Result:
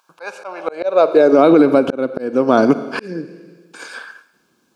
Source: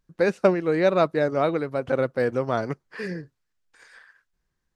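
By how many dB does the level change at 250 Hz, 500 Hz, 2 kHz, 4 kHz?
+12.0 dB, +8.0 dB, +4.5 dB, +6.5 dB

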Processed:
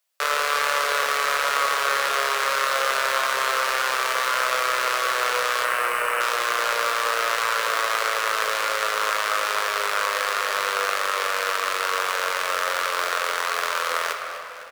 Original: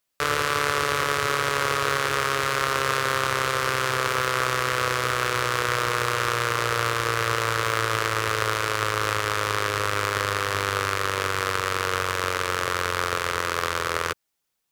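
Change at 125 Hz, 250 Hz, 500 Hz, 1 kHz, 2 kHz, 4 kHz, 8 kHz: under -25 dB, -12.0 dB, -0.5 dB, +2.0 dB, +2.0 dB, +2.0 dB, +1.5 dB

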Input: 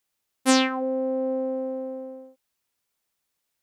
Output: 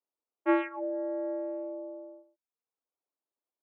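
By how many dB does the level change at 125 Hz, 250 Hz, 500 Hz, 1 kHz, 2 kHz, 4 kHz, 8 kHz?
no reading, -7.5 dB, -6.0 dB, -7.0 dB, -9.0 dB, under -25 dB, under -40 dB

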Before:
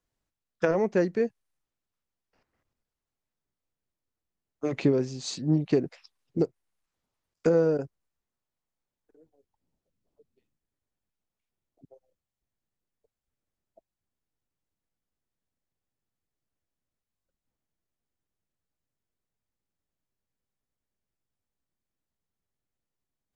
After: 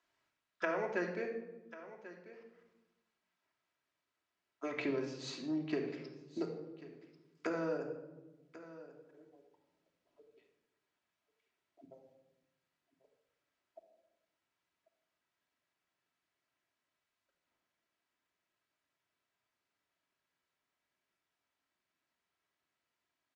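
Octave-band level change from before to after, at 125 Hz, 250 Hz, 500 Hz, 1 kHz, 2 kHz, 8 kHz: -18.5 dB, -11.5 dB, -12.5 dB, -5.0 dB, -2.5 dB, -13.5 dB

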